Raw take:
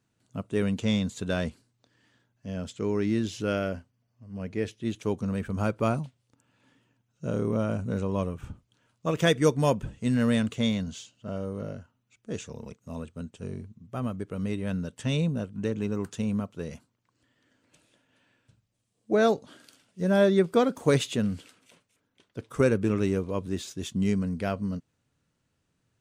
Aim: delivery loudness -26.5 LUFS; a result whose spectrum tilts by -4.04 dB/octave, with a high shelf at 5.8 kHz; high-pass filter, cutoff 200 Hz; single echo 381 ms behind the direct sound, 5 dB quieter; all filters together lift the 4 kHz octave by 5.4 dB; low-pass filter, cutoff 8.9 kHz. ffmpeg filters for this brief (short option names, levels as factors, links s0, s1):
-af "highpass=200,lowpass=8900,equalizer=f=4000:t=o:g=9,highshelf=f=5800:g=-7.5,aecho=1:1:381:0.562,volume=1.33"